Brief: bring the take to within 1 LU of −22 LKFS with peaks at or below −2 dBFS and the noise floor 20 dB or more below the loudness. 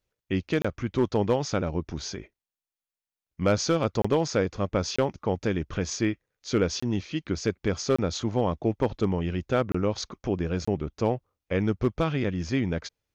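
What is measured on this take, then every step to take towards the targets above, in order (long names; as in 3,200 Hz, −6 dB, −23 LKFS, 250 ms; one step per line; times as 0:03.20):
share of clipped samples 0.3%; peaks flattened at −14.5 dBFS; number of dropouts 7; longest dropout 25 ms; integrated loudness −28.0 LKFS; sample peak −14.5 dBFS; target loudness −22.0 LKFS
→ clipped peaks rebuilt −14.5 dBFS
repair the gap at 0:00.62/0:04.02/0:04.96/0:06.80/0:07.96/0:09.72/0:10.65, 25 ms
level +6 dB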